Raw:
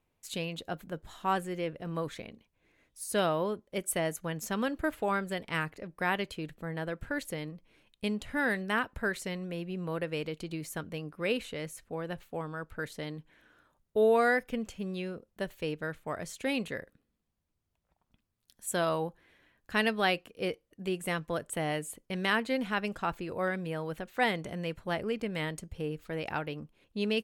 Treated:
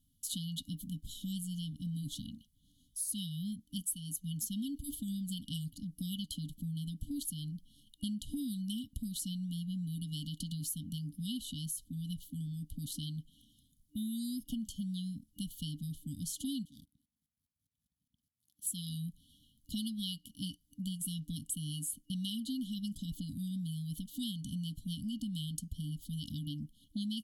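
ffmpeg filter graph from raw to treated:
ffmpeg -i in.wav -filter_complex "[0:a]asettb=1/sr,asplit=3[link_01][link_02][link_03];[link_01]atrim=end=16.654[link_04];[link_02]atrim=start=16.65:end=18.67,asetpts=PTS-STARTPTS,afade=type=in:duration=0.004:curve=qsin,afade=type=out:start_time=2.016:duration=0.004:curve=qsin,aeval=exprs='if(lt(val(0),0),0.251*val(0),val(0))':channel_layout=same,highpass=67,aeval=exprs='val(0)*pow(10,-19*if(lt(mod(-4.9*n/s,1),2*abs(-4.9)/1000),1-mod(-4.9*n/s,1)/(2*abs(-4.9)/1000),(mod(-4.9*n/s,1)-2*abs(-4.9)/1000)/(1-2*abs(-4.9)/1000))/20)':channel_layout=same[link_05];[link_03]atrim=start=18.666[link_06];[link_04][link_05]acrossfade=duration=0.004:curve1=hsin:curve2=qsin[link_07];[link_07][link_06]acrossfade=duration=0.004:curve1=qsin:curve2=hsin,afftfilt=real='re*(1-between(b*sr/4096,300,2900))':imag='im*(1-between(b*sr/4096,300,2900))':win_size=4096:overlap=0.75,equalizer=frequency=11000:width_type=o:width=0.31:gain=11.5,acompressor=threshold=-42dB:ratio=4,volume=5.5dB" out.wav

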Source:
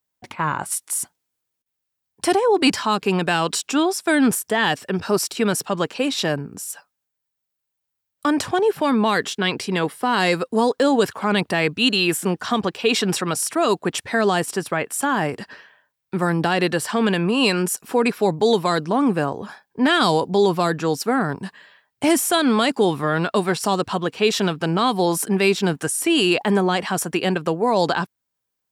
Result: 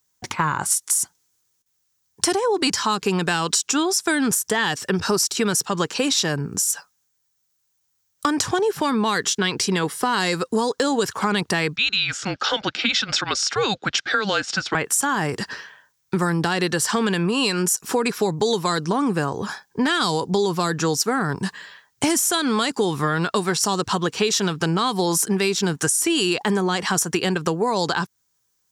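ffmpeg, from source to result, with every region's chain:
ffmpeg -i in.wav -filter_complex "[0:a]asettb=1/sr,asplit=3[link_01][link_02][link_03];[link_01]atrim=end=11.764[link_04];[link_02]atrim=start=11.76:end=14.75,asetpts=PTS-STARTPTS,afade=type=in:duration=0.004:curve=qsin,afade=type=out:start_time=2.986:duration=0.004:curve=qsin,afreqshift=-210,highpass=340,equalizer=frequency=410:width_type=q:width=4:gain=-3,equalizer=frequency=1000:width_type=q:width=4:gain=-10,equalizer=frequency=1500:width_type=q:width=4:gain=4,equalizer=frequency=3400:width_type=q:width=4:gain=3,lowpass=frequency=5000:width=0.5412,lowpass=frequency=5000:width=1.3066[link_05];[link_03]atrim=start=14.746[link_06];[link_04][link_05]acrossfade=duration=0.004:curve1=hsin:curve2=qsin[link_07];[link_07][link_06]acrossfade=duration=0.004:curve1=qsin:curve2=hsin,equalizer=frequency=250:width_type=o:width=0.67:gain=-5,equalizer=frequency=630:width_type=o:width=0.67:gain=-8,equalizer=frequency=2500:width_type=o:width=0.67:gain=-4,equalizer=frequency=6300:width_type=o:width=0.67:gain=9,acompressor=threshold=-27dB:ratio=6,volume=9dB" out.wav

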